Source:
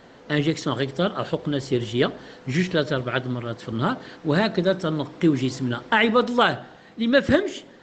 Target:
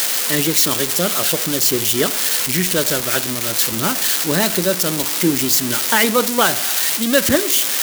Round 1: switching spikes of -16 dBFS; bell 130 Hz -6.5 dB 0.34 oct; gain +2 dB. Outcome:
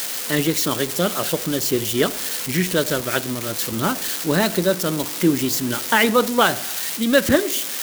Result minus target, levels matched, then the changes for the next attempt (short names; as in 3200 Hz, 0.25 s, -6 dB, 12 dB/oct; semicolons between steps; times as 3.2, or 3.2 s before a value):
switching spikes: distortion -8 dB
change: switching spikes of -8 dBFS